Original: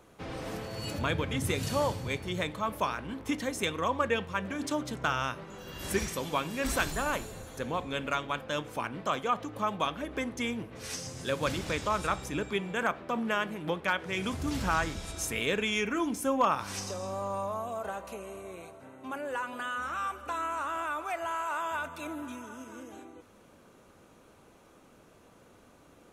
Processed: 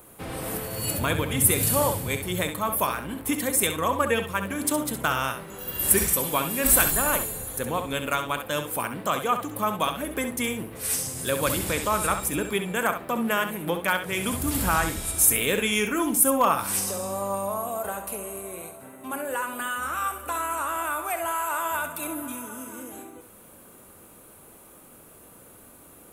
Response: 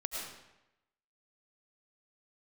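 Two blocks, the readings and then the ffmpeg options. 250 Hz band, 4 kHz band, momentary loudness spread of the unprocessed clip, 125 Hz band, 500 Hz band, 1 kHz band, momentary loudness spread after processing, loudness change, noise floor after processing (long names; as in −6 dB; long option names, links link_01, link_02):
+5.0 dB, +5.0 dB, 11 LU, +5.0 dB, +5.0 dB, +5.0 dB, 13 LU, +7.5 dB, −50 dBFS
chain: -filter_complex "[0:a]aexciter=amount=7.1:drive=6.9:freq=8400,asplit=2[link_01][link_02];[1:a]atrim=start_sample=2205,atrim=end_sample=3528,adelay=66[link_03];[link_02][link_03]afir=irnorm=-1:irlink=0,volume=-7dB[link_04];[link_01][link_04]amix=inputs=2:normalize=0,volume=4.5dB"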